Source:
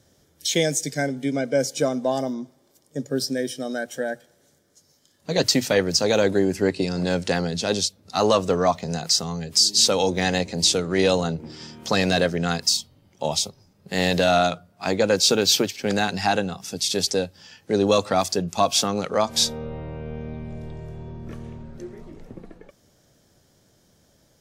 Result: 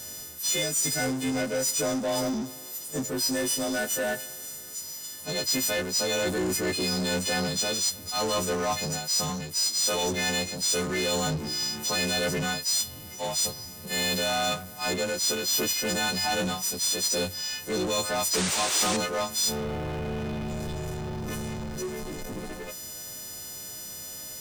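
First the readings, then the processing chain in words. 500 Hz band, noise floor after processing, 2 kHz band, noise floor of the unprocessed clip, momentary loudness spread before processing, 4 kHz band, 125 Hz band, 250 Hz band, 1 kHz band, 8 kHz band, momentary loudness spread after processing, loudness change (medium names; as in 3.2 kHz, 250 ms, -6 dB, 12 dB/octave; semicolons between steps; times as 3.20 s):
-7.5 dB, -41 dBFS, -2.0 dB, -62 dBFS, 17 LU, -3.5 dB, -5.5 dB, -6.0 dB, -6.0 dB, +0.5 dB, 12 LU, -5.0 dB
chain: partials quantised in pitch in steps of 3 st; treble shelf 6.7 kHz +6.5 dB; reverse; compression 6:1, threshold -22 dBFS, peak gain reduction 19.5 dB; reverse; power-law waveshaper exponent 0.5; painted sound noise, 18.33–18.97 s, 280–9400 Hz -21 dBFS; trim -8.5 dB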